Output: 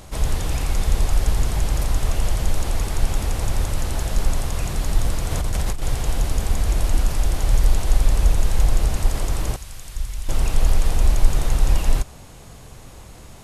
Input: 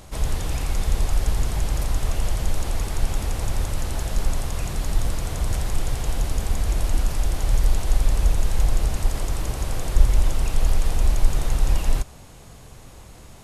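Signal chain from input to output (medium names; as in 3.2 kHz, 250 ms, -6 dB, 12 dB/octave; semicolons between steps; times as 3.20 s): 5.31–5.82 s: compressor with a negative ratio -23 dBFS, ratio -1; 9.56–10.29 s: amplifier tone stack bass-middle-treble 5-5-5; trim +2.5 dB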